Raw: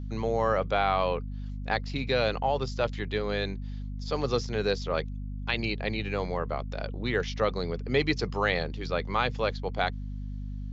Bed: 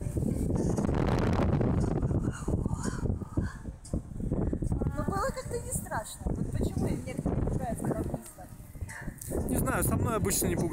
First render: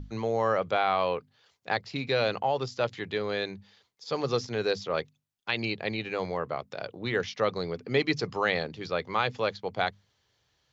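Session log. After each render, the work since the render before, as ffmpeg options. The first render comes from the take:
-af "bandreject=f=50:t=h:w=6,bandreject=f=100:t=h:w=6,bandreject=f=150:t=h:w=6,bandreject=f=200:t=h:w=6,bandreject=f=250:t=h:w=6"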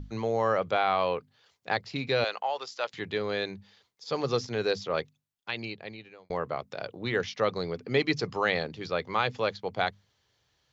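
-filter_complex "[0:a]asettb=1/sr,asplit=3[s0][s1][s2];[s0]atrim=end=2.244[s3];[s1]atrim=start=2.24:end=2.94,asetpts=PTS-STARTPTS,afade=t=in:d=0.004:c=qsin,afade=t=out:st=0.696:d=0.004:c=qsin,highpass=720[s4];[s2]atrim=start=2.936[s5];[s3][s4]acrossfade=d=0.004:c1=hsin:c2=qsin[s6];[s6][s5]acrossfade=d=0.004:c1=qsin:c2=hsin,asplit=2[s7][s8];[s7]atrim=end=6.3,asetpts=PTS-STARTPTS,afade=t=out:st=5:d=1.3[s9];[s8]atrim=start=6.3,asetpts=PTS-STARTPTS,afade=t=in:d=0.004:c=hsin[s10];[s9][s10]concat=n=2:v=0:a=1"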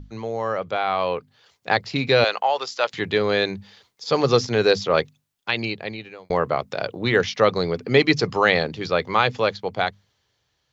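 -af "dynaudnorm=f=370:g=7:m=3.76"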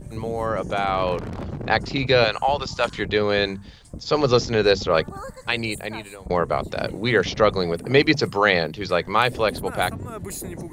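-filter_complex "[1:a]volume=0.596[s0];[0:a][s0]amix=inputs=2:normalize=0"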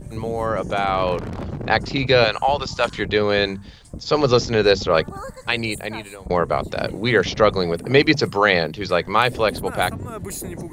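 -af "volume=1.26,alimiter=limit=0.794:level=0:latency=1"

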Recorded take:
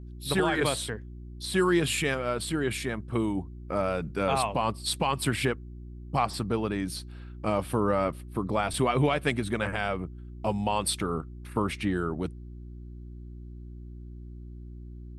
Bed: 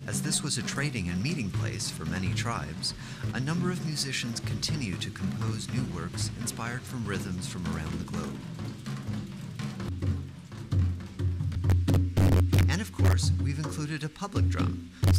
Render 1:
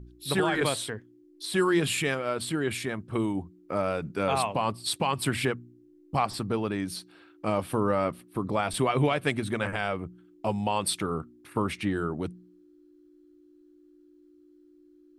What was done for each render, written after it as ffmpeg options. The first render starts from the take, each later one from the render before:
-af "bandreject=f=60:t=h:w=4,bandreject=f=120:t=h:w=4,bandreject=f=180:t=h:w=4,bandreject=f=240:t=h:w=4"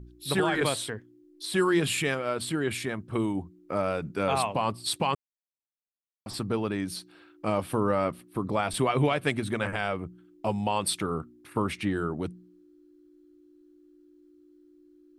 -filter_complex "[0:a]asplit=3[s0][s1][s2];[s0]atrim=end=5.15,asetpts=PTS-STARTPTS,afade=t=out:st=5.146:d=0.004:c=hsin[s3];[s1]atrim=start=5.15:end=6.26,asetpts=PTS-STARTPTS,volume=0[s4];[s2]atrim=start=6.26,asetpts=PTS-STARTPTS,afade=t=in:d=0.004:c=hsin[s5];[s3][s4][s5]concat=n=3:v=0:a=1"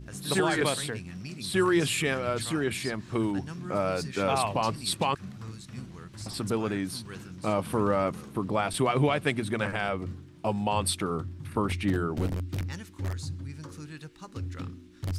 -filter_complex "[1:a]volume=0.316[s0];[0:a][s0]amix=inputs=2:normalize=0"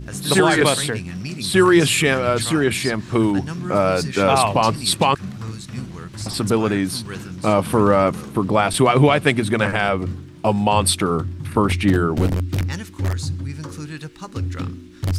-af "volume=3.35"

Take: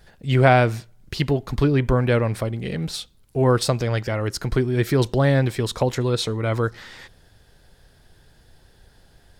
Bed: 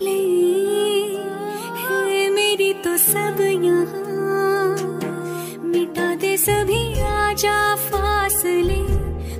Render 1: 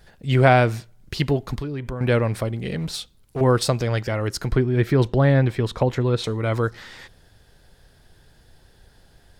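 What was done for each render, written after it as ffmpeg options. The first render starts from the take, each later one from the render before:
-filter_complex "[0:a]asettb=1/sr,asplit=3[s0][s1][s2];[s0]atrim=end=1.554[s3];[s1]atrim=start=1.55:end=2.01,asetpts=PTS-STARTPTS,afade=t=in:d=0.004:c=qsin,afade=t=out:st=0.456:d=0.004:c=qsin,acompressor=threshold=0.0355:ratio=3:attack=3.2:release=140:knee=1:detection=peak[s4];[s2]atrim=start=2.006[s5];[s3][s4]acrossfade=d=0.004:c1=hsin:c2=qsin[s6];[s6][s5]acrossfade=d=0.004:c1=qsin:c2=hsin,asettb=1/sr,asplit=3[s7][s8][s9];[s7]atrim=end=2.794[s10];[s8]atrim=start=2.79:end=3.41,asetpts=PTS-STARTPTS,afade=t=in:d=0.004:c=qsin,afade=t=out:st=0.616:d=0.004:c=qsin,volume=12.6,asoftclip=hard,volume=0.0794[s11];[s9]atrim=start=3.406[s12];[s10][s11]acrossfade=d=0.004:c1=hsin:c2=qsin[s13];[s13][s12]acrossfade=d=0.004:c1=qsin:c2=hsin,asettb=1/sr,asplit=3[s14][s15][s16];[s14]atrim=end=4.524[s17];[s15]atrim=start=4.52:end=6.24,asetpts=PTS-STARTPTS,afade=t=in:d=0.004:c=qsin,afade=t=out:st=1.716:d=0.004:c=qsin,bass=f=250:g=2,treble=f=4000:g=-11[s18];[s16]atrim=start=6.236[s19];[s17][s18]acrossfade=d=0.004:c1=hsin:c2=qsin[s20];[s20][s19]acrossfade=d=0.004:c1=qsin:c2=hsin"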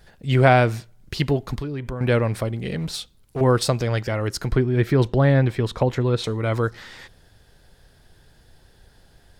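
-af anull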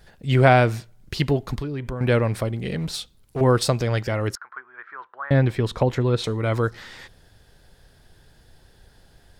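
-filter_complex "[0:a]asettb=1/sr,asplit=3[s0][s1][s2];[s0]atrim=end=4.354[s3];[s1]atrim=start=4.35:end=5.31,asetpts=PTS-STARTPTS,afade=t=in:d=0.004:c=qsin,afade=t=out:st=0.956:d=0.004:c=qsin,asuperpass=centerf=1300:order=4:qfactor=2.2[s4];[s2]atrim=start=5.306[s5];[s3][s4]acrossfade=d=0.004:c1=hsin:c2=qsin[s6];[s6][s5]acrossfade=d=0.004:c1=qsin:c2=hsin"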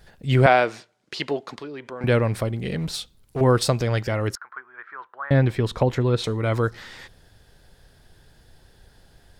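-filter_complex "[0:a]asettb=1/sr,asplit=3[s0][s1][s2];[s0]atrim=end=0.464[s3];[s1]atrim=start=0.46:end=2.04,asetpts=PTS-STARTPTS,afade=t=in:d=0.004:c=qsin,afade=t=out:st=1.576:d=0.004:c=qsin,highpass=380,lowpass=6800[s4];[s2]atrim=start=2.036[s5];[s3][s4]acrossfade=d=0.004:c1=hsin:c2=qsin[s6];[s6][s5]acrossfade=d=0.004:c1=qsin:c2=hsin"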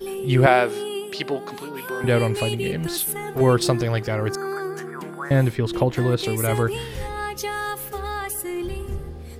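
-filter_complex "[1:a]volume=0.316[s0];[0:a][s0]amix=inputs=2:normalize=0"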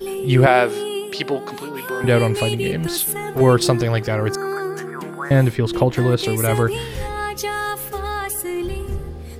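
-af "volume=1.5,alimiter=limit=0.891:level=0:latency=1"

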